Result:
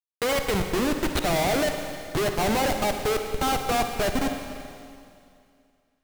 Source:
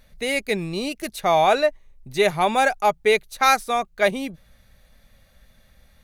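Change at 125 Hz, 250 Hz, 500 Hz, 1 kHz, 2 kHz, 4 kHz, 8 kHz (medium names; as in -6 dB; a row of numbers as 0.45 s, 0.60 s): +4.0 dB, +2.0 dB, -4.5 dB, -6.0 dB, -6.0 dB, -2.0 dB, +1.5 dB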